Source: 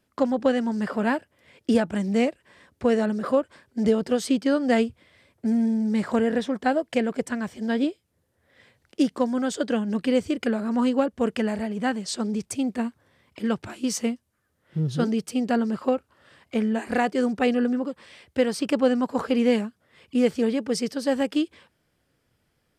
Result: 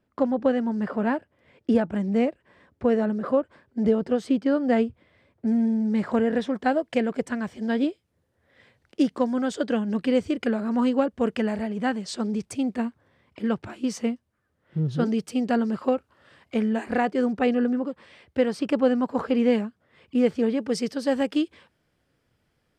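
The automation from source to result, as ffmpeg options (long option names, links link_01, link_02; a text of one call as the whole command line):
ffmpeg -i in.wav -af "asetnsamples=nb_out_samples=441:pad=0,asendcmd='5.47 lowpass f 2400;6.33 lowpass f 4100;12.85 lowpass f 2400;15.06 lowpass f 5200;16.86 lowpass f 2400;20.6 lowpass f 5600',lowpass=frequency=1400:poles=1" out.wav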